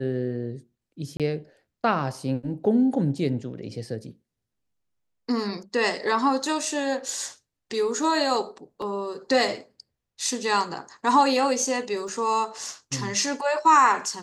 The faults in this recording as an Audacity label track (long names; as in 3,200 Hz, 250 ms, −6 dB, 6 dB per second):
1.170000	1.200000	drop-out 27 ms
8.820000	8.820000	drop-out 2 ms
12.080000	12.080000	drop-out 3 ms